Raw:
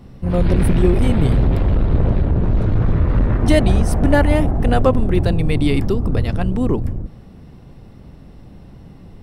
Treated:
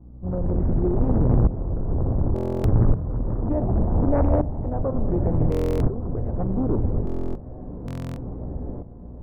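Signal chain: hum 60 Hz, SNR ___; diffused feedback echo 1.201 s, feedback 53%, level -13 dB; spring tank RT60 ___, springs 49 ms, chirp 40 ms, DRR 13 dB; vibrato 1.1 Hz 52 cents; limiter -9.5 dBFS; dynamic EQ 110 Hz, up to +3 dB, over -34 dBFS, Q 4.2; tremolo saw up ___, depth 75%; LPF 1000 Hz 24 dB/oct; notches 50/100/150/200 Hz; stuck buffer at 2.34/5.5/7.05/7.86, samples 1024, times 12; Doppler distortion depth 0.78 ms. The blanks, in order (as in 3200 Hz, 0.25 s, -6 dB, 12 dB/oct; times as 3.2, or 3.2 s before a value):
18 dB, 2 s, 0.68 Hz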